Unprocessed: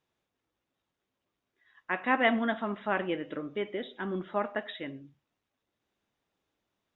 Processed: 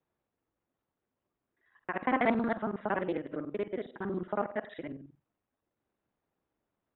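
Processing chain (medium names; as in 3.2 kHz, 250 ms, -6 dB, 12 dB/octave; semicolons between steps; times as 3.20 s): time reversed locally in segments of 46 ms; Bessel low-pass 1.4 kHz, order 2; loudspeaker Doppler distortion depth 0.28 ms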